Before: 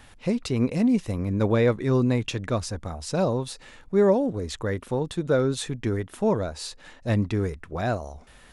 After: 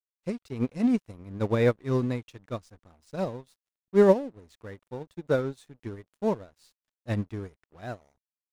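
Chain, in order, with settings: crossover distortion -39 dBFS; upward expansion 2.5:1, over -32 dBFS; trim +3 dB

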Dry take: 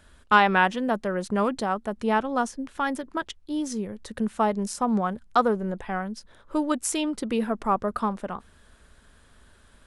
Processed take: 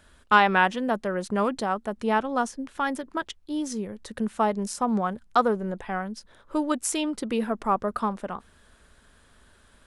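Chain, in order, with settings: bass shelf 160 Hz -3.5 dB

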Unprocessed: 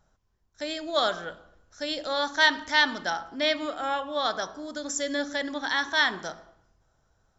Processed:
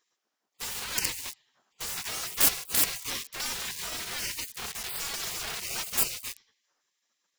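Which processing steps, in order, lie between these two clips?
in parallel at -3 dB: companded quantiser 2-bit; on the sum: spectral gate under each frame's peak -25 dB weak; trim +3.5 dB

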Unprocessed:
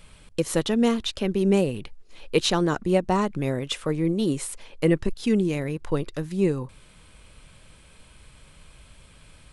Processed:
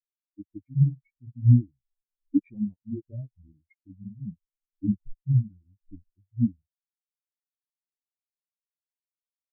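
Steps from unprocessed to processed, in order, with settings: rotating-head pitch shifter -8.5 st; spectral contrast expander 4:1

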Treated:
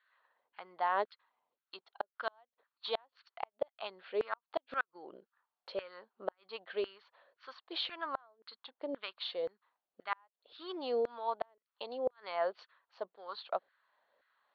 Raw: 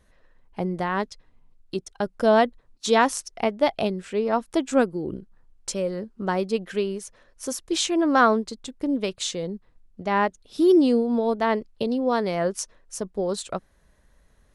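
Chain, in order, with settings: rippled Chebyshev low-pass 4.5 kHz, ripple 3 dB; LFO high-pass saw down 1.9 Hz 490–1600 Hz; inverted gate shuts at -12 dBFS, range -40 dB; trim -8 dB

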